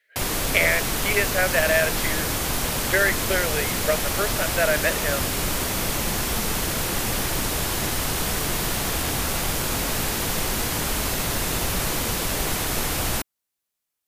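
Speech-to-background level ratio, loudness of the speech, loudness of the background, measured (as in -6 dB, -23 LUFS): 0.0 dB, -24.0 LUFS, -24.0 LUFS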